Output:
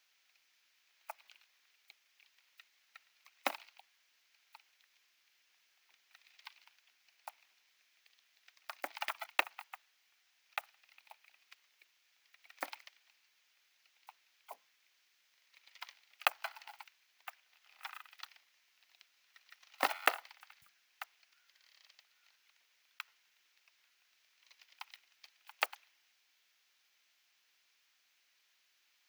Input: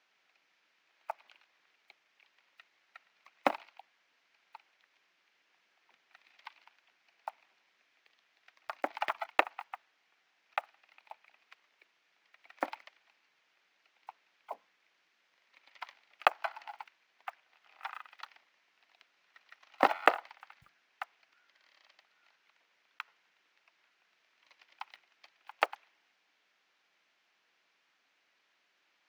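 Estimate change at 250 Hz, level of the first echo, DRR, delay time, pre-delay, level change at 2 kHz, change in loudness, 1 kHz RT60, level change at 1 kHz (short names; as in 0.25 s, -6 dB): -11.5 dB, none, none, none, none, -3.0 dB, -4.5 dB, none, -7.5 dB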